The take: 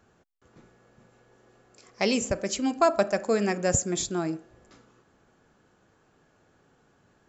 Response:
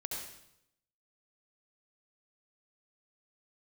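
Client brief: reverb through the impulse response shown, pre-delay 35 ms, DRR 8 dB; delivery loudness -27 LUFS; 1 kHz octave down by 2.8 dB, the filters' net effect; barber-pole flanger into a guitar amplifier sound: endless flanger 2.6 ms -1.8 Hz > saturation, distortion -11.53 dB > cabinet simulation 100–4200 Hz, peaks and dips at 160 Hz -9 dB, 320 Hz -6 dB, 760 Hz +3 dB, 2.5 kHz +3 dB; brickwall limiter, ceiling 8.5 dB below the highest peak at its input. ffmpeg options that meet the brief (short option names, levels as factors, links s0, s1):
-filter_complex "[0:a]equalizer=f=1000:t=o:g=-6.5,alimiter=limit=0.133:level=0:latency=1,asplit=2[s0][s1];[1:a]atrim=start_sample=2205,adelay=35[s2];[s1][s2]afir=irnorm=-1:irlink=0,volume=0.355[s3];[s0][s3]amix=inputs=2:normalize=0,asplit=2[s4][s5];[s5]adelay=2.6,afreqshift=-1.8[s6];[s4][s6]amix=inputs=2:normalize=1,asoftclip=threshold=0.0398,highpass=100,equalizer=f=160:t=q:w=4:g=-9,equalizer=f=320:t=q:w=4:g=-6,equalizer=f=760:t=q:w=4:g=3,equalizer=f=2500:t=q:w=4:g=3,lowpass=f=4200:w=0.5412,lowpass=f=4200:w=1.3066,volume=3.16"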